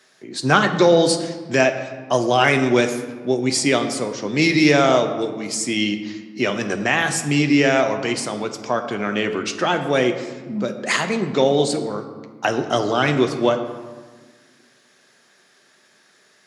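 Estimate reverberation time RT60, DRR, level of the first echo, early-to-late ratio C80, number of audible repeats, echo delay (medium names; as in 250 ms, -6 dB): 1.4 s, 6.0 dB, no echo, 10.5 dB, no echo, no echo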